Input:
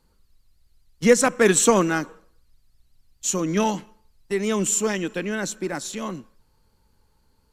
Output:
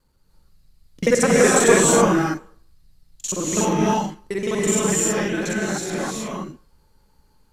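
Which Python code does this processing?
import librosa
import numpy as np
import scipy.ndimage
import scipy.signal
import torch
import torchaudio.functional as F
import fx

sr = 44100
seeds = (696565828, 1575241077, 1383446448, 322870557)

y = fx.local_reverse(x, sr, ms=41.0)
y = fx.rev_gated(y, sr, seeds[0], gate_ms=350, shape='rising', drr_db=-4.5)
y = y * librosa.db_to_amplitude(-2.0)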